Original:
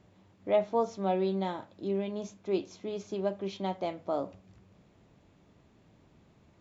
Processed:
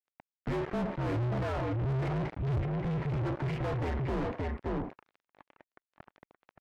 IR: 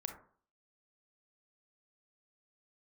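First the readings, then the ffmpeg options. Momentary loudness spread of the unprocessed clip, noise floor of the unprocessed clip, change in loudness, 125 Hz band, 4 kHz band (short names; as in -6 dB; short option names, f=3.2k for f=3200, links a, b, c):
10 LU, -63 dBFS, -0.5 dB, +13.0 dB, -3.5 dB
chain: -filter_complex "[0:a]lowshelf=f=420:t=q:w=3:g=13,acrossover=split=420[a][b];[b]acompressor=threshold=-40dB:ratio=6[c];[a][c]amix=inputs=2:normalize=0,highpass=f=450:t=q:w=0.5412,highpass=f=450:t=q:w=1.307,lowpass=f=2.5k:t=q:w=0.5176,lowpass=f=2.5k:t=q:w=0.7071,lowpass=f=2.5k:t=q:w=1.932,afreqshift=-260,aeval=exprs='sgn(val(0))*max(abs(val(0))-0.00158,0)':c=same,aphaser=in_gain=1:out_gain=1:delay=3.5:decay=0.24:speed=0.46:type=sinusoidal,volume=25.5dB,asoftclip=hard,volume=-25.5dB,aecho=1:1:573:0.355,asplit=2[d][e];[e]highpass=f=720:p=1,volume=46dB,asoftclip=type=tanh:threshold=-22.5dB[f];[d][f]amix=inputs=2:normalize=0,lowpass=f=1.2k:p=1,volume=-6dB,volume=-2dB" -ar 44100 -c:a libvorbis -b:a 128k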